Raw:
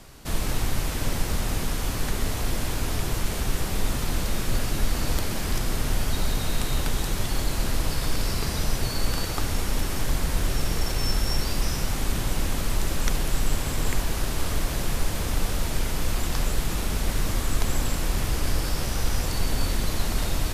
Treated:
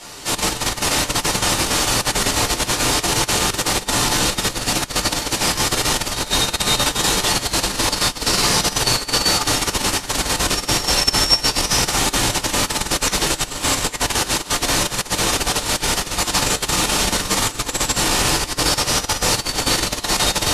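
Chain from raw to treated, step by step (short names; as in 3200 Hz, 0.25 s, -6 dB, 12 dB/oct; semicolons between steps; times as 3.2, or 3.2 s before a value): LPF 8200 Hz 12 dB/oct; high shelf 4300 Hz +9 dB; shoebox room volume 240 m³, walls furnished, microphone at 4.4 m; negative-ratio compressor -6 dBFS, ratio -1; HPF 520 Hz 6 dB/oct; gain +3 dB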